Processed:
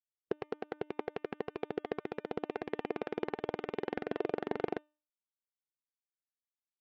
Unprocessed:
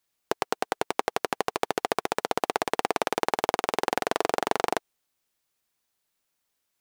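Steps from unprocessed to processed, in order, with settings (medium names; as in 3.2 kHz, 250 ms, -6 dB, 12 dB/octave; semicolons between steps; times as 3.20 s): low-pass 2.5 kHz 12 dB/octave; peaking EQ 900 Hz -14 dB 1.9 oct; de-hum 300.4 Hz, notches 12; spectral contrast expander 1.5:1; trim -2.5 dB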